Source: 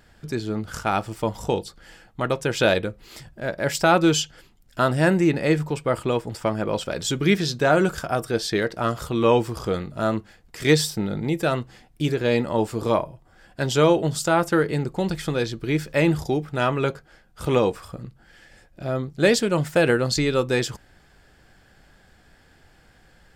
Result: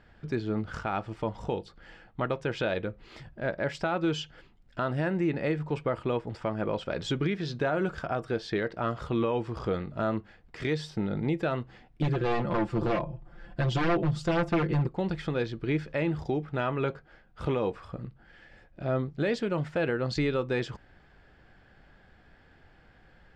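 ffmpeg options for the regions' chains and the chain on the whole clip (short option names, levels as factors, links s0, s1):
-filter_complex "[0:a]asettb=1/sr,asplit=3[s0][s1][s2];[s0]atrim=end=12.024[s3];[s1]atrim=start=12.02:end=14.87,asetpts=PTS-STARTPTS,afade=t=in:d=0.004:c=qsin,afade=t=out:st=2.846:d=0.004:c=qsin,lowshelf=f=230:g=9,aeval=exprs='0.188*(abs(mod(val(0)/0.188+3,4)-2)-1)':c=same,aecho=1:1:5.8:0.76,atrim=end_sample=125685[s4];[s2]atrim=start=14.866[s5];[s3][s4]acrossfade=d=0.004:c1=hsin:c2=qsin[s6];[s6][s5]acrossfade=d=0.004:c1=qsin:c2=hsin,lowpass=3000,alimiter=limit=0.15:level=0:latency=1:release=289,volume=0.75"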